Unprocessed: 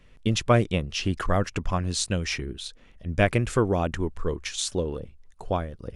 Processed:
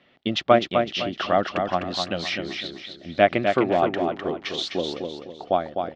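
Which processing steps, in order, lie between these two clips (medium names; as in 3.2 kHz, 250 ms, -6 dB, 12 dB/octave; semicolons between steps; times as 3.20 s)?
0.58–1.17 s: compression, threshold -24 dBFS, peak gain reduction 6.5 dB; cabinet simulation 330–3800 Hz, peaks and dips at 460 Hz -10 dB, 710 Hz +4 dB, 1 kHz -9 dB, 1.6 kHz -6 dB, 2.5 kHz -7 dB; feedback delay 254 ms, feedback 36%, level -5.5 dB; trim +7.5 dB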